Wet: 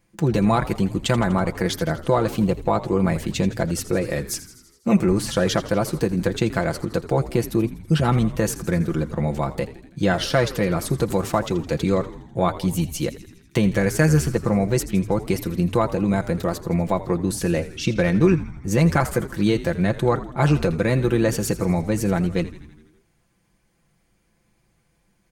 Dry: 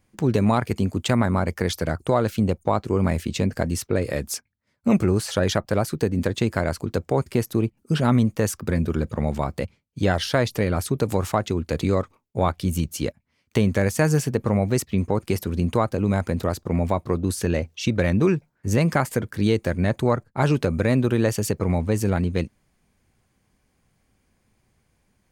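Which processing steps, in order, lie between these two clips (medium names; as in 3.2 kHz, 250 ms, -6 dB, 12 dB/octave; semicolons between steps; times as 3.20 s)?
comb 5.9 ms, depth 60%; frequency-shifting echo 82 ms, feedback 63%, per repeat -80 Hz, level -15 dB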